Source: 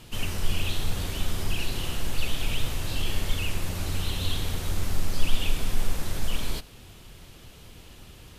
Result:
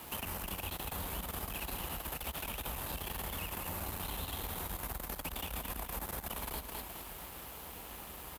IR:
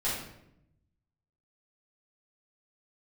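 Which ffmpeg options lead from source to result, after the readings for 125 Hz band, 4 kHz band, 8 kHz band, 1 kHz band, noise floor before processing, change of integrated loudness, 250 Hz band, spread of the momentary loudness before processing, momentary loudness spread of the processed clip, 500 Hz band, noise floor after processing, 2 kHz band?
-13.5 dB, -11.5 dB, -5.5 dB, -1.0 dB, -49 dBFS, -8.5 dB, -9.5 dB, 18 LU, 6 LU, -6.0 dB, -48 dBFS, -8.0 dB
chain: -filter_complex "[0:a]firequalizer=gain_entry='entry(380,0);entry(870,10);entry(1400,4);entry(2900,-2);entry(5600,-5);entry(13000,13)':delay=0.05:min_phase=1,asoftclip=type=tanh:threshold=-24dB,highpass=f=45:w=0.5412,highpass=f=45:w=1.3066,aecho=1:1:210|420|630|840|1050:0.355|0.145|0.0596|0.0245|0.01,acrossover=split=190[a][b];[b]acompressor=threshold=-36dB:ratio=6[c];[a][c]amix=inputs=2:normalize=0,equalizer=f=110:t=o:w=0.62:g=-15,aeval=exprs='sgn(val(0))*max(abs(val(0))-0.00237,0)':c=same,acompressor=threshold=-41dB:ratio=4,volume=4.5dB"

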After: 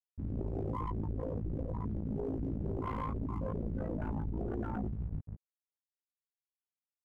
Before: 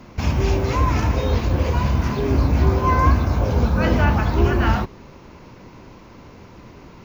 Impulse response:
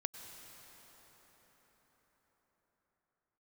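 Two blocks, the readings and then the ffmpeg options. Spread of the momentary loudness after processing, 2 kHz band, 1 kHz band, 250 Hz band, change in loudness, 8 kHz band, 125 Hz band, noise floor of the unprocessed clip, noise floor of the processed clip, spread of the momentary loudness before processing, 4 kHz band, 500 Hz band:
3 LU, -28.5 dB, -20.5 dB, -14.5 dB, -18.5 dB, n/a, -18.5 dB, -44 dBFS, under -85 dBFS, 4 LU, under -30 dB, -16.5 dB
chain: -filter_complex "[0:a]adynamicsmooth=sensitivity=4.5:basefreq=3.1k,asplit=2[a][b];[b]aecho=0:1:444|888|1332|1776:0.299|0.125|0.0527|0.0221[c];[a][c]amix=inputs=2:normalize=0,afftfilt=real='re*gte(hypot(re,im),0.355)':imag='im*gte(hypot(re,im),0.355)':win_size=1024:overlap=0.75,areverse,acompressor=threshold=-26dB:ratio=5,areverse,aeval=exprs='sgn(val(0))*max(abs(val(0))-0.00168,0)':c=same,tremolo=f=56:d=0.919,equalizer=f=4.1k:w=2.5:g=-5,aeval=exprs='(tanh(39.8*val(0)+0.5)-tanh(0.5))/39.8':c=same,equalizer=f=380:w=0.34:g=10,asplit=2[d][e];[e]adelay=19,volume=-4dB[f];[d][f]amix=inputs=2:normalize=0,alimiter=level_in=4.5dB:limit=-24dB:level=0:latency=1:release=20,volume=-4.5dB"

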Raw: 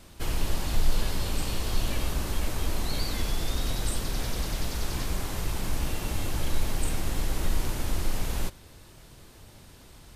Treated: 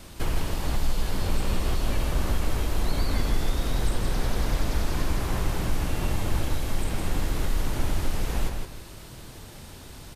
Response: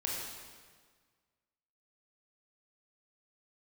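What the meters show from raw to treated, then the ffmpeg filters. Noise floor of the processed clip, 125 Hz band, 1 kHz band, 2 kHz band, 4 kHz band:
-43 dBFS, +3.5 dB, +3.5 dB, +2.0 dB, -1.0 dB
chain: -filter_complex "[0:a]acrossover=split=2200|4900[a][b][c];[a]acompressor=threshold=-27dB:ratio=4[d];[b]acompressor=threshold=-54dB:ratio=4[e];[c]acompressor=threshold=-52dB:ratio=4[f];[d][e][f]amix=inputs=3:normalize=0,aecho=1:1:161|322|483|644:0.562|0.163|0.0473|0.0137,volume=6dB"

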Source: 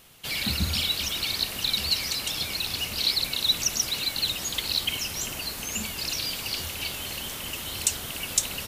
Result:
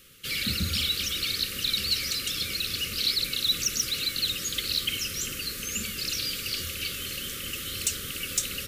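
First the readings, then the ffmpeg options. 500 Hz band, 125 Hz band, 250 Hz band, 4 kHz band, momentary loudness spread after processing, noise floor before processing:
-2.5 dB, -1.5 dB, -1.0 dB, -1.0 dB, 7 LU, -36 dBFS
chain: -af "asuperstop=centerf=810:order=20:qfactor=1.4,asoftclip=type=tanh:threshold=-16dB,bandreject=f=71.35:t=h:w=4,bandreject=f=142.7:t=h:w=4,bandreject=f=214.05:t=h:w=4,bandreject=f=285.4:t=h:w=4,bandreject=f=356.75:t=h:w=4,bandreject=f=428.1:t=h:w=4,bandreject=f=499.45:t=h:w=4,bandreject=f=570.8:t=h:w=4,bandreject=f=642.15:t=h:w=4,bandreject=f=713.5:t=h:w=4,bandreject=f=784.85:t=h:w=4,bandreject=f=856.2:t=h:w=4,bandreject=f=927.55:t=h:w=4,bandreject=f=998.9:t=h:w=4,bandreject=f=1.07025k:t=h:w=4,bandreject=f=1.1416k:t=h:w=4,bandreject=f=1.21295k:t=h:w=4,bandreject=f=1.2843k:t=h:w=4,bandreject=f=1.35565k:t=h:w=4,bandreject=f=1.427k:t=h:w=4,bandreject=f=1.49835k:t=h:w=4,bandreject=f=1.5697k:t=h:w=4,bandreject=f=1.64105k:t=h:w=4,bandreject=f=1.7124k:t=h:w=4,bandreject=f=1.78375k:t=h:w=4,bandreject=f=1.8551k:t=h:w=4,bandreject=f=1.92645k:t=h:w=4,bandreject=f=1.9978k:t=h:w=4"

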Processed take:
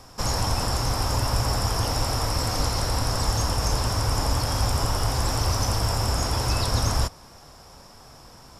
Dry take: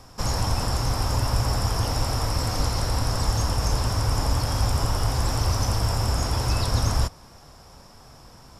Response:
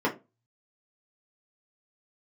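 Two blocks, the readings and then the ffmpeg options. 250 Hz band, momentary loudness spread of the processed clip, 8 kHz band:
0.0 dB, 1 LU, +2.5 dB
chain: -af "bass=f=250:g=-3,treble=f=4k:g=1,volume=1.5dB"

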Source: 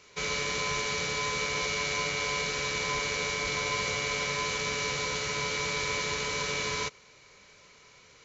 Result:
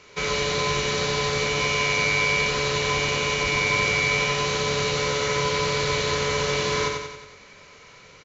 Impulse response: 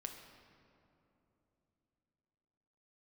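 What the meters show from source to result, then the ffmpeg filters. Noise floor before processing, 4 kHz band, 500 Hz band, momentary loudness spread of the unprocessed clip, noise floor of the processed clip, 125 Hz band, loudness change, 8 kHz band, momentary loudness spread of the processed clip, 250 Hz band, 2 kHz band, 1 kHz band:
-57 dBFS, +6.5 dB, +10.0 dB, 1 LU, -49 dBFS, +11.0 dB, +7.0 dB, n/a, 4 LU, +9.5 dB, +7.0 dB, +7.5 dB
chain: -af "lowpass=f=3.6k:p=1,aecho=1:1:91|182|273|364|455|546|637:0.631|0.341|0.184|0.0994|0.0537|0.029|0.0156,volume=7.5dB"

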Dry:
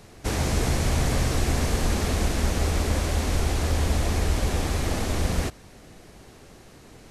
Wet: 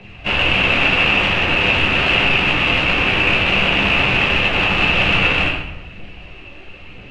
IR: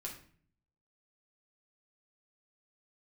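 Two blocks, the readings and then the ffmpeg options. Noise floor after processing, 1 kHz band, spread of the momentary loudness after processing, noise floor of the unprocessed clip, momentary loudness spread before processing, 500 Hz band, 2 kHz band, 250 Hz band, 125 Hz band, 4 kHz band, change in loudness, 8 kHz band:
-38 dBFS, +11.5 dB, 3 LU, -49 dBFS, 3 LU, +7.0 dB, +21.0 dB, +5.5 dB, 0.0 dB, +17.0 dB, +11.5 dB, under -10 dB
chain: -filter_complex "[0:a]acrossover=split=170|1500|2100[a][b][c][d];[d]acompressor=threshold=-47dB:ratio=6[e];[a][b][c][e]amix=inputs=4:normalize=0,aphaser=in_gain=1:out_gain=1:delay=3.6:decay=0.55:speed=1:type=triangular,aeval=exprs='(mod(10.6*val(0)+1,2)-1)/10.6':c=same,lowpass=f=2.7k:t=q:w=11[f];[1:a]atrim=start_sample=2205,asetrate=22491,aresample=44100[g];[f][g]afir=irnorm=-1:irlink=0,volume=1.5dB"

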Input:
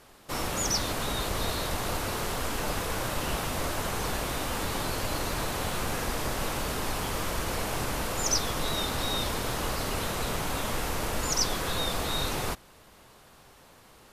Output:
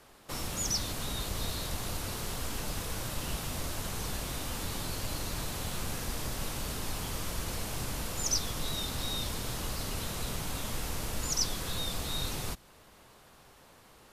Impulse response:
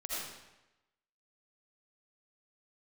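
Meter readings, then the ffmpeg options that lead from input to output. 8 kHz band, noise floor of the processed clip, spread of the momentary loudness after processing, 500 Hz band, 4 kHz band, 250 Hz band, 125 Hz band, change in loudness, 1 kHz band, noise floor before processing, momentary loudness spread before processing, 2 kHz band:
-2.5 dB, -58 dBFS, 6 LU, -9.0 dB, -4.0 dB, -5.5 dB, -3.0 dB, -4.5 dB, -9.5 dB, -55 dBFS, 4 LU, -8.0 dB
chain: -filter_complex "[0:a]acrossover=split=240|3000[a][b][c];[b]acompressor=threshold=-39dB:ratio=6[d];[a][d][c]amix=inputs=3:normalize=0,volume=-2.5dB"

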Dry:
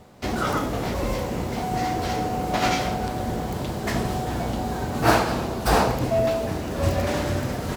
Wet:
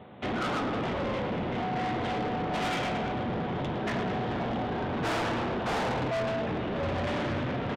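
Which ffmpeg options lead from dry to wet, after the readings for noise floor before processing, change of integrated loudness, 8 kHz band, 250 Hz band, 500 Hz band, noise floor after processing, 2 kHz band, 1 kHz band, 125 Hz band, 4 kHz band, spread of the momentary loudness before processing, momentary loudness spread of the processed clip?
-30 dBFS, -6.0 dB, -14.5 dB, -4.5 dB, -6.0 dB, -32 dBFS, -4.0 dB, -6.0 dB, -7.0 dB, -5.5 dB, 7 LU, 2 LU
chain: -af "highpass=110,aecho=1:1:110|220|330|440|550|660|770:0.355|0.209|0.124|0.0729|0.043|0.0254|0.015,aresample=8000,asoftclip=type=hard:threshold=-20.5dB,aresample=44100,acontrast=51,asoftclip=type=tanh:threshold=-23dB,volume=-4.5dB"

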